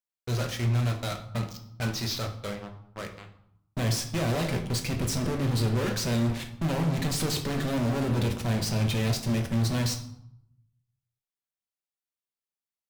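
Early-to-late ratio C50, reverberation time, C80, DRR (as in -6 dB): 9.5 dB, 0.75 s, 13.0 dB, 3.5 dB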